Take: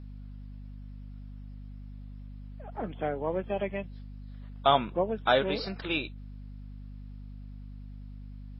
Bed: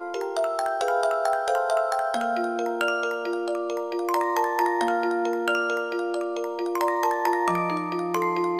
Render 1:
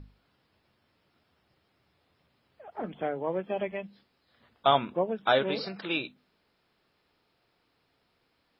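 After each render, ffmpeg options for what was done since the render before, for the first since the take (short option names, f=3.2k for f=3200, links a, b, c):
-af "bandreject=f=50:t=h:w=6,bandreject=f=100:t=h:w=6,bandreject=f=150:t=h:w=6,bandreject=f=200:t=h:w=6,bandreject=f=250:t=h:w=6"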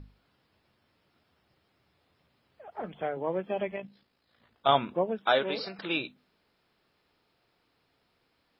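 -filter_complex "[0:a]asettb=1/sr,asplit=3[a][b][c];[a]atrim=end=2.754[d];[b]atrim=start=2.75:end=3.17,asetpts=PTS-STARTPTS,afade=t=in:d=0.004:c=qsin,afade=t=out:st=0.416:d=0.004:c=qsin,equalizer=f=270:t=o:w=0.77:g=-7.5[e];[c]atrim=start=3.166[f];[d][e]acrossfade=d=0.004:c1=hsin:c2=qsin[g];[g][f]acrossfade=d=0.004:c1=qsin:c2=hsin,asettb=1/sr,asplit=3[h][i][j];[h]atrim=end=3.764[k];[i]atrim=start=3.76:end=4.69,asetpts=PTS-STARTPTS,afade=t=in:d=0.004:c=qsin,afade=t=out:st=0.926:d=0.004:c=qsin,tremolo=f=56:d=0.519[l];[j]atrim=start=4.686[m];[k][l]acrossfade=d=0.004:c1=hsin:c2=qsin[n];[n][m]acrossfade=d=0.004:c1=qsin:c2=hsin,asettb=1/sr,asplit=3[o][p][q];[o]atrim=end=5.194[r];[p]atrim=start=5.19:end=5.79,asetpts=PTS-STARTPTS,afade=t=in:d=0.004:c=qsin,afade=t=out:st=0.596:d=0.004:c=qsin,highpass=f=310:p=1[s];[q]atrim=start=5.786[t];[r][s]acrossfade=d=0.004:c1=hsin:c2=qsin[u];[u][t]acrossfade=d=0.004:c1=qsin:c2=hsin"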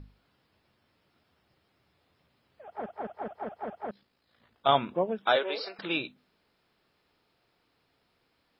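-filter_complex "[0:a]asettb=1/sr,asplit=3[a][b][c];[a]atrim=end=5.364[d];[b]atrim=start=5.36:end=5.79,asetpts=PTS-STARTPTS,afade=t=in:d=0.004:c=qsin,afade=t=out:st=0.426:d=0.004:c=qsin,highpass=f=340:w=0.5412,highpass=f=340:w=1.3066[e];[c]atrim=start=5.786[f];[d][e]acrossfade=d=0.004:c1=hsin:c2=qsin[g];[g][f]acrossfade=d=0.004:c1=qsin:c2=hsin,asplit=7[h][i][j][k][l][m][n];[h]atrim=end=2.862[o];[i]atrim=start=2.648:end=2.862[p];[j]atrim=start=2.648:end=2.862[q];[k]atrim=start=2.648:end=2.862[r];[l]atrim=start=2.648:end=2.862[s];[m]atrim=start=2.648:end=2.862[t];[n]atrim=start=3.908[u];[o][p]acrossfade=d=0.004:c1=hsin:c2=hsin[v];[v][q]acrossfade=d=0.004:c1=hsin:c2=hsin[w];[w][r]acrossfade=d=0.004:c1=hsin:c2=hsin[x];[x][s]acrossfade=d=0.004:c1=hsin:c2=hsin[y];[y][t]acrossfade=d=0.004:c1=hsin:c2=hsin[z];[z][u]acrossfade=d=0.004:c1=hsin:c2=hsin"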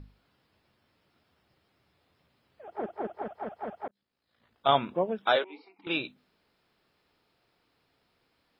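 -filter_complex "[0:a]asettb=1/sr,asplit=3[a][b][c];[a]atrim=end=2.634[d];[b]atrim=start=2.63:end=3.22,asetpts=PTS-STARTPTS,afade=t=in:d=0.004:c=qsin,afade=t=out:st=0.586:d=0.004:c=qsin,equalizer=f=350:w=2.5:g=11.5[e];[c]atrim=start=3.216[f];[d][e]acrossfade=d=0.004:c1=hsin:c2=qsin[g];[g][f]acrossfade=d=0.004:c1=qsin:c2=hsin,asettb=1/sr,asplit=3[h][i][j];[h]atrim=end=5.444[k];[i]atrim=start=5.44:end=5.87,asetpts=PTS-STARTPTS,afade=t=in:d=0.004:c=qsin,afade=t=out:st=0.426:d=0.004:c=qsin,asplit=3[l][m][n];[l]bandpass=f=300:t=q:w=8,volume=0dB[o];[m]bandpass=f=870:t=q:w=8,volume=-6dB[p];[n]bandpass=f=2.24k:t=q:w=8,volume=-9dB[q];[o][p][q]amix=inputs=3:normalize=0[r];[j]atrim=start=5.866[s];[k][r]acrossfade=d=0.004:c1=hsin:c2=qsin[t];[t][s]acrossfade=d=0.004:c1=qsin:c2=hsin,asplit=2[u][v];[u]atrim=end=3.88,asetpts=PTS-STARTPTS,afade=t=out:st=3.876:d=0.004:c=hsin[w];[v]atrim=start=3.88,asetpts=PTS-STARTPTS,afade=t=in:d=0.82[x];[w][x]concat=n=2:v=0:a=1"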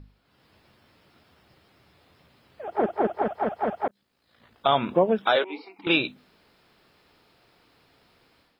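-af "alimiter=limit=-20.5dB:level=0:latency=1:release=182,dynaudnorm=f=240:g=3:m=11dB"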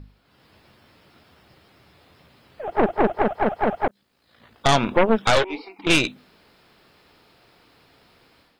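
-af "aeval=exprs='0.335*(cos(1*acos(clip(val(0)/0.335,-1,1)))-cos(1*PI/2))+0.133*(cos(4*acos(clip(val(0)/0.335,-1,1)))-cos(4*PI/2))+0.0531*(cos(5*acos(clip(val(0)/0.335,-1,1)))-cos(5*PI/2))':c=same"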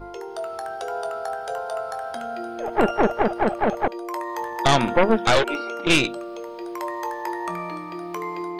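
-filter_complex "[1:a]volume=-5.5dB[a];[0:a][a]amix=inputs=2:normalize=0"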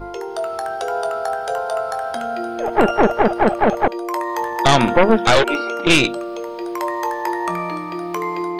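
-af "volume=6.5dB,alimiter=limit=-2dB:level=0:latency=1"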